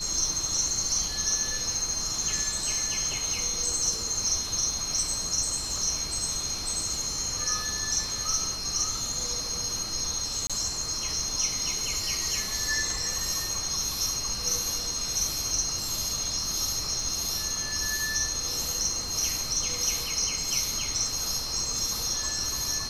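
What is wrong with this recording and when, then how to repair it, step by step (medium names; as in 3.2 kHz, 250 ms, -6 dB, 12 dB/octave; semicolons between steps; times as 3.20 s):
crackle 31 per s -36 dBFS
whine 4.2 kHz -34 dBFS
10.47–10.50 s: dropout 26 ms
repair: de-click; band-stop 4.2 kHz, Q 30; interpolate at 10.47 s, 26 ms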